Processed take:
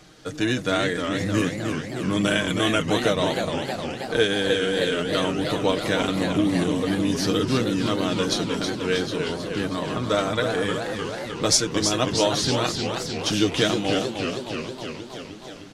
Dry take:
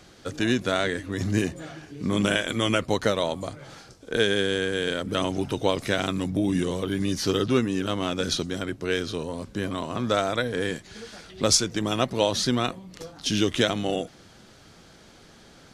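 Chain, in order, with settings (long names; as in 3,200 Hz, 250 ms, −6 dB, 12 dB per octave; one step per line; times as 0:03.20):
comb filter 6.5 ms, depth 55%
feedback echo with a swinging delay time 312 ms, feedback 70%, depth 192 cents, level −6 dB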